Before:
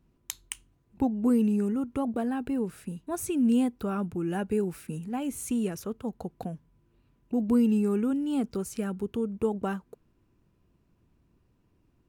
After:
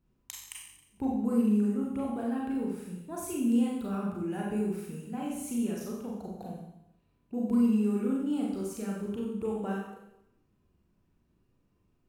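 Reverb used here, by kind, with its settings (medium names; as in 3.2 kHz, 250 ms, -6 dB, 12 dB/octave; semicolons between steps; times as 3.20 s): Schroeder reverb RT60 0.82 s, combs from 30 ms, DRR -3.5 dB; trim -8.5 dB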